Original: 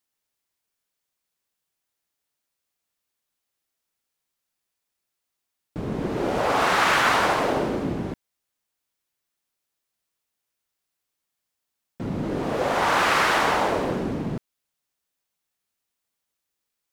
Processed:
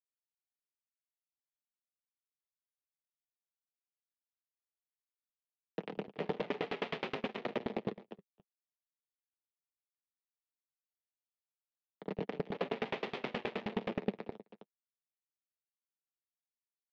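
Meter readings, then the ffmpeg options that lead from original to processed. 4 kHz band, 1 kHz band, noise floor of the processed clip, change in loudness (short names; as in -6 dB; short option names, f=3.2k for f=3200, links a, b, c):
-18.0 dB, -22.0 dB, under -85 dBFS, -17.0 dB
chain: -filter_complex "[0:a]afftdn=nr=13:nf=-38,agate=range=-7dB:threshold=-26dB:ratio=16:detection=peak,acrossover=split=1600[a][b];[a]aeval=exprs='sgn(val(0))*max(abs(val(0))-0.0126,0)':c=same[c];[c][b]amix=inputs=2:normalize=0,acompressor=threshold=-36dB:ratio=10,acrusher=bits=3:dc=4:mix=0:aa=0.000001,afreqshift=14,asoftclip=type=tanh:threshold=-35.5dB,lowshelf=f=410:g=6,flanger=delay=6.4:depth=3.1:regen=-35:speed=0.17:shape=sinusoidal,highpass=f=190:w=0.5412,highpass=f=190:w=1.3066,equalizer=f=200:t=q:w=4:g=6,equalizer=f=290:t=q:w=4:g=-6,equalizer=f=430:t=q:w=4:g=8,equalizer=f=1.1k:t=q:w=4:g=-6,equalizer=f=1.5k:t=q:w=4:g=-7,lowpass=f=3.3k:w=0.5412,lowpass=f=3.3k:w=1.3066,asplit=2[d][e];[e]aecho=0:1:260:0.15[f];[d][f]amix=inputs=2:normalize=0,aeval=exprs='val(0)*pow(10,-30*if(lt(mod(9.5*n/s,1),2*abs(9.5)/1000),1-mod(9.5*n/s,1)/(2*abs(9.5)/1000),(mod(9.5*n/s,1)-2*abs(9.5)/1000)/(1-2*abs(9.5)/1000))/20)':c=same,volume=16.5dB"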